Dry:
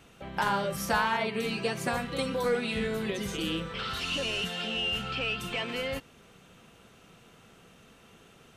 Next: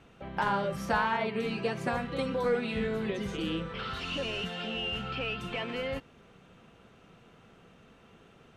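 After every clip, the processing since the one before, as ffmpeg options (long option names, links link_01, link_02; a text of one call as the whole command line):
ffmpeg -i in.wav -af "aemphasis=mode=reproduction:type=75kf" out.wav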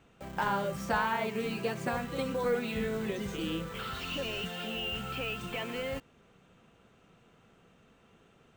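ffmpeg -i in.wav -filter_complex "[0:a]asplit=2[link_01][link_02];[link_02]acrusher=bits=6:mix=0:aa=0.000001,volume=-6.5dB[link_03];[link_01][link_03]amix=inputs=2:normalize=0,aexciter=amount=1.7:drive=2.4:freq=6800,volume=-5dB" out.wav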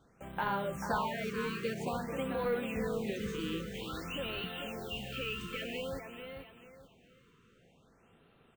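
ffmpeg -i in.wav -af "aecho=1:1:439|878|1317|1756:0.422|0.135|0.0432|0.0138,afftfilt=real='re*(1-between(b*sr/1024,670*pow(6400/670,0.5+0.5*sin(2*PI*0.51*pts/sr))/1.41,670*pow(6400/670,0.5+0.5*sin(2*PI*0.51*pts/sr))*1.41))':imag='im*(1-between(b*sr/1024,670*pow(6400/670,0.5+0.5*sin(2*PI*0.51*pts/sr))/1.41,670*pow(6400/670,0.5+0.5*sin(2*PI*0.51*pts/sr))*1.41))':win_size=1024:overlap=0.75,volume=-3dB" out.wav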